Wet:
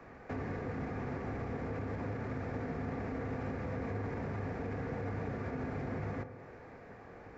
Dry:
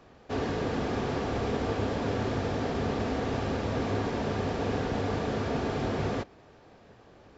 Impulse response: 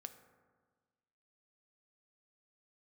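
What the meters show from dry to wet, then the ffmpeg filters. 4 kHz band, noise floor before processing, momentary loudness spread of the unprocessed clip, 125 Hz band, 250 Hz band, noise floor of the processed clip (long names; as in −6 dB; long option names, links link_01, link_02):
−21.5 dB, −56 dBFS, 1 LU, −6.0 dB, −8.0 dB, −52 dBFS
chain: -filter_complex "[0:a]highshelf=frequency=2600:width_type=q:width=3:gain=-6.5,acontrast=70,alimiter=limit=-18dB:level=0:latency=1,acrossover=split=83|210[link_01][link_02][link_03];[link_01]acompressor=threshold=-47dB:ratio=4[link_04];[link_02]acompressor=threshold=-37dB:ratio=4[link_05];[link_03]acompressor=threshold=-38dB:ratio=4[link_06];[link_04][link_05][link_06]amix=inputs=3:normalize=0[link_07];[1:a]atrim=start_sample=2205[link_08];[link_07][link_08]afir=irnorm=-1:irlink=0,volume=1dB"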